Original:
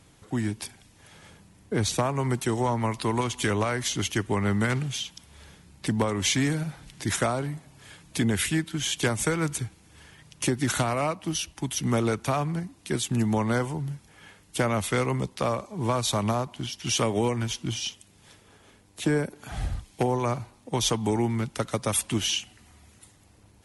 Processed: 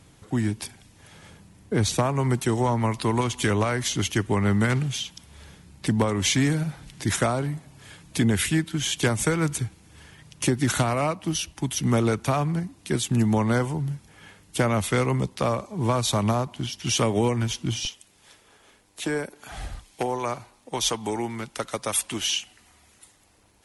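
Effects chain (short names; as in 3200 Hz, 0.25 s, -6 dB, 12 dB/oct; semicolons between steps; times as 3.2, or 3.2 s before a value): bell 110 Hz +2.5 dB 2.8 oct, from 17.85 s -11 dB; gain +1.5 dB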